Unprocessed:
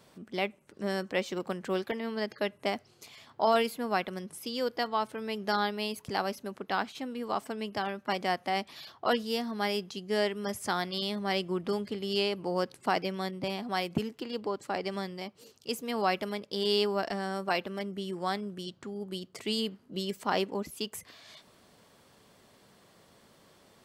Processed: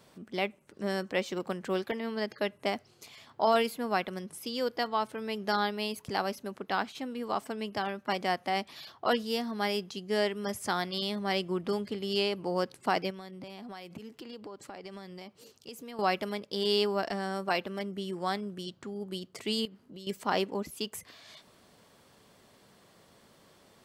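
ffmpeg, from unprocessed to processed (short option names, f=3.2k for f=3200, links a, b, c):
-filter_complex "[0:a]asettb=1/sr,asplit=3[a][b][c];[a]atrim=end=13.104[d];[b]atrim=start=13.1:end=15.99,asetpts=PTS-STARTPTS,afade=t=in:d=0.004:c=qsin,afade=t=out:st=2.886:d=0.004:c=qsin,acompressor=threshold=-41dB:ratio=5:attack=3.2:release=140:knee=1:detection=peak[e];[c]atrim=start=15.986[f];[d][e]acrossfade=d=0.004:c1=hsin:c2=qsin[g];[g][f]acrossfade=d=0.004:c1=qsin:c2=hsin,asettb=1/sr,asplit=3[h][i][j];[h]atrim=end=19.654[k];[i]atrim=start=19.65:end=20.07,asetpts=PTS-STARTPTS,afade=t=in:d=0.004:c=qsin,afade=t=out:st=0.416:d=0.004:c=qsin,acompressor=threshold=-46dB:ratio=3:attack=3.2:release=140:knee=1:detection=peak[l];[j]atrim=start=20.066[m];[k][l]acrossfade=d=0.004:c1=hsin:c2=qsin[n];[n][m]acrossfade=d=0.004:c1=qsin:c2=hsin"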